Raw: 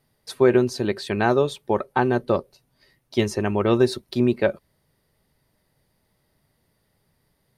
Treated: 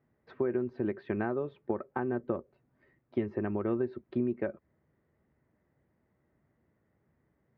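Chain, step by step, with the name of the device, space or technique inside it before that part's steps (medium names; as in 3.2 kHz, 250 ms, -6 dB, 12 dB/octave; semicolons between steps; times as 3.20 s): bass amplifier (compression 5:1, threshold -26 dBFS, peak gain reduction 13 dB; cabinet simulation 63–2000 Hz, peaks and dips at 69 Hz +5 dB, 230 Hz +4 dB, 330 Hz +6 dB, 900 Hz -3 dB); trim -5 dB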